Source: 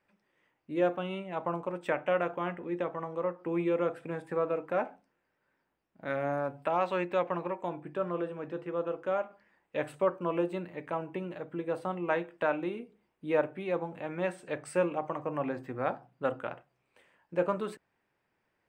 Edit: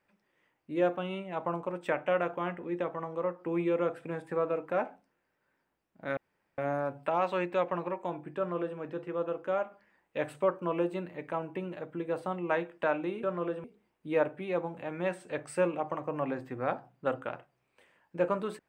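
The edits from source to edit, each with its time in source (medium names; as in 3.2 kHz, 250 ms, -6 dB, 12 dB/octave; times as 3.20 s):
6.17 s: insert room tone 0.41 s
7.96–8.37 s: copy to 12.82 s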